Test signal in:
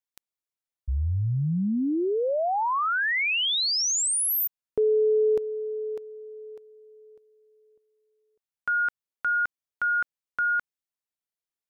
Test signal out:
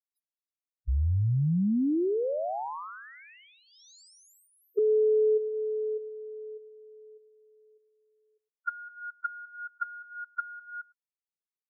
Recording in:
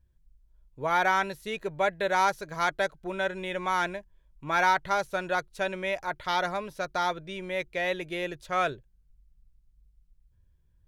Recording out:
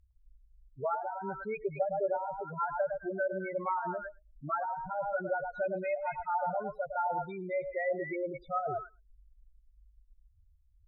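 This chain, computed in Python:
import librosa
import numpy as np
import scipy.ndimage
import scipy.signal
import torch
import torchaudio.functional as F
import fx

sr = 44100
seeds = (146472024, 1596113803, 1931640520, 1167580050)

y = fx.spec_topn(x, sr, count=4)
y = fx.echo_stepped(y, sr, ms=108, hz=830.0, octaves=1.4, feedback_pct=70, wet_db=-3.5)
y = fx.env_lowpass_down(y, sr, base_hz=470.0, full_db=-24.0)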